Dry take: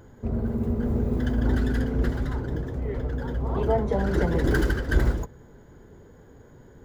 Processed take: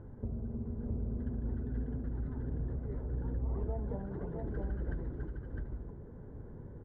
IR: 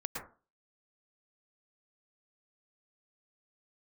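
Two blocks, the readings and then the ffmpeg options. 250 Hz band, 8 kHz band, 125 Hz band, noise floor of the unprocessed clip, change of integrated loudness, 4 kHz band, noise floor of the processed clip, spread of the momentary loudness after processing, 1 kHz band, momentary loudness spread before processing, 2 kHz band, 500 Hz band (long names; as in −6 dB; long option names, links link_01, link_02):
−13.5 dB, can't be measured, −10.5 dB, −51 dBFS, −13.0 dB, below −35 dB, −49 dBFS, 10 LU, −18.5 dB, 7 LU, −24.0 dB, −16.0 dB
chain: -filter_complex "[0:a]lowpass=1300,lowshelf=frequency=280:gain=9,acompressor=threshold=-29dB:ratio=10,asplit=2[link_01][link_02];[link_02]aecho=0:1:658:0.708[link_03];[link_01][link_03]amix=inputs=2:normalize=0,volume=-6dB"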